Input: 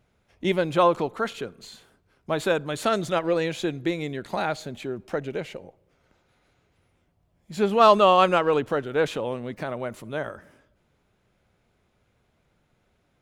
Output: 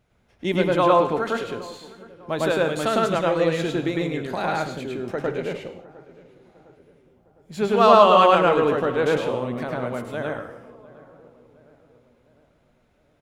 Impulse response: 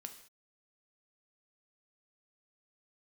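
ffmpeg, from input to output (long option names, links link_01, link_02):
-filter_complex "[0:a]asplit=2[link_01][link_02];[link_02]adelay=707,lowpass=frequency=1500:poles=1,volume=-20.5dB,asplit=2[link_03][link_04];[link_04]adelay=707,lowpass=frequency=1500:poles=1,volume=0.55,asplit=2[link_05][link_06];[link_06]adelay=707,lowpass=frequency=1500:poles=1,volume=0.55,asplit=2[link_07][link_08];[link_08]adelay=707,lowpass=frequency=1500:poles=1,volume=0.55[link_09];[link_01][link_03][link_05][link_07][link_09]amix=inputs=5:normalize=0,asplit=2[link_10][link_11];[1:a]atrim=start_sample=2205,highshelf=frequency=4000:gain=-7.5,adelay=105[link_12];[link_11][link_12]afir=irnorm=-1:irlink=0,volume=7.5dB[link_13];[link_10][link_13]amix=inputs=2:normalize=0,volume=-1dB"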